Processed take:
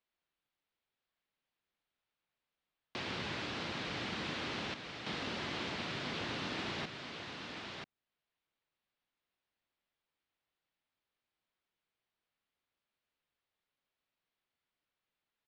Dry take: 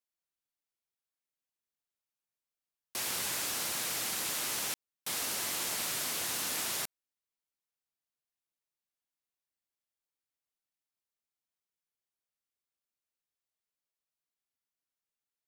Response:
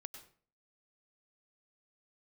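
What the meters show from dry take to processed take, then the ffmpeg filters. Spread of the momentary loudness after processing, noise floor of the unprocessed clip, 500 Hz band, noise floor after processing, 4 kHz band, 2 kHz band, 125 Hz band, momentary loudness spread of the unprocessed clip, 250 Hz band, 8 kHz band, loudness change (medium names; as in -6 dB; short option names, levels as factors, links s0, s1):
6 LU, under -85 dBFS, +2.5 dB, under -85 dBFS, -4.0 dB, -0.5 dB, +8.0 dB, 5 LU, +7.0 dB, -22.5 dB, -7.0 dB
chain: -filter_complex "[0:a]asplit=2[s0][s1];[s1]aecho=0:1:985:0.422[s2];[s0][s2]amix=inputs=2:normalize=0,acrossover=split=370[s3][s4];[s4]acompressor=threshold=0.00141:ratio=1.5[s5];[s3][s5]amix=inputs=2:normalize=0,lowpass=f=3900:w=0.5412,lowpass=f=3900:w=1.3066,volume=2.37"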